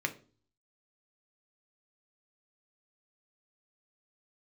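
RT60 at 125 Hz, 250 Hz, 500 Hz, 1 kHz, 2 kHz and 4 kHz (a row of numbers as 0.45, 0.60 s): 0.70, 0.55, 0.45, 0.35, 0.30, 0.35 s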